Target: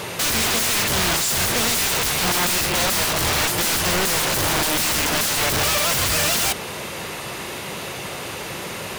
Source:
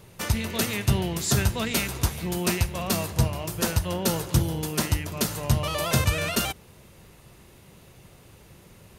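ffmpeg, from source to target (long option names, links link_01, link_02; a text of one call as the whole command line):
ffmpeg -i in.wav -filter_complex "[0:a]asplit=2[link_01][link_02];[link_02]highpass=frequency=720:poles=1,volume=36dB,asoftclip=type=tanh:threshold=-9.5dB[link_03];[link_01][link_03]amix=inputs=2:normalize=0,lowpass=frequency=5200:poles=1,volume=-6dB,aeval=exprs='(mod(5.96*val(0)+1,2)-1)/5.96':channel_layout=same,volume=-2dB" out.wav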